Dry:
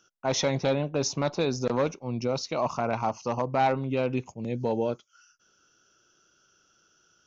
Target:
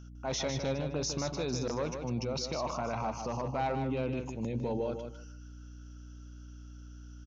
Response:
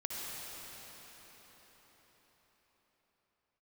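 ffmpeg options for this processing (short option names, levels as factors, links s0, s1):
-filter_complex "[0:a]alimiter=level_in=1.12:limit=0.0631:level=0:latency=1:release=12,volume=0.891,aeval=exprs='val(0)+0.00501*(sin(2*PI*60*n/s)+sin(2*PI*2*60*n/s)/2+sin(2*PI*3*60*n/s)/3+sin(2*PI*4*60*n/s)/4+sin(2*PI*5*60*n/s)/5)':c=same,asplit=2[s0][s1];[s1]aecho=0:1:153|306|459:0.447|0.0804|0.0145[s2];[s0][s2]amix=inputs=2:normalize=0,volume=0.891"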